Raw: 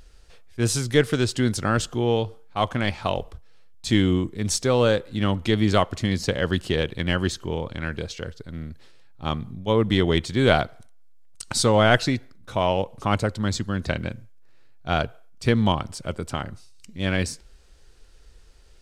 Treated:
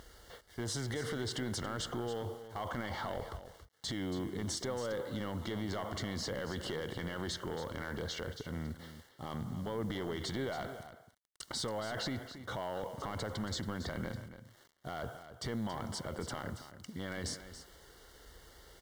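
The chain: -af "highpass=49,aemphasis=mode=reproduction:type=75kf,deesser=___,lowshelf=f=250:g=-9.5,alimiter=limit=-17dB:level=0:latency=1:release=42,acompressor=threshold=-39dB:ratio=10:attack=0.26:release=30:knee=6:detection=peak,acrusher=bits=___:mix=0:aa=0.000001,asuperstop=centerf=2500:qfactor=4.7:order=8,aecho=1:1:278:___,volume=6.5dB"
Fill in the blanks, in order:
0.65, 10, 0.251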